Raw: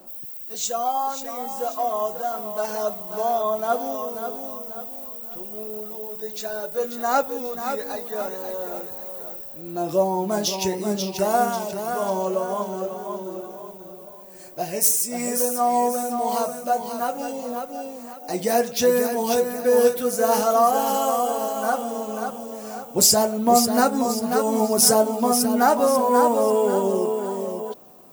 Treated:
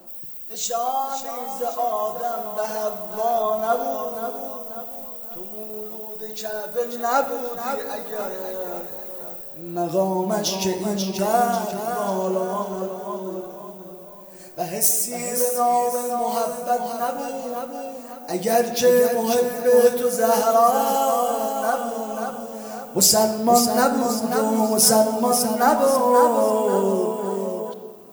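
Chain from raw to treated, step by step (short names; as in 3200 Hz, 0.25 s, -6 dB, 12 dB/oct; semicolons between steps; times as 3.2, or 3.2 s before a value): shoebox room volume 1500 m³, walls mixed, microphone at 0.77 m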